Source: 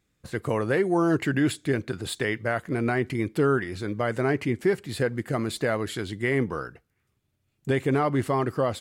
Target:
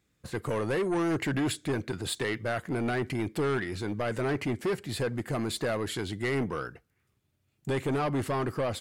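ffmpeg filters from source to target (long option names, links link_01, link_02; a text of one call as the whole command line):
ffmpeg -i in.wav -filter_complex "[0:a]highpass=42,acrossover=split=3500[link_01][link_02];[link_01]asoftclip=type=tanh:threshold=-24.5dB[link_03];[link_03][link_02]amix=inputs=2:normalize=0" out.wav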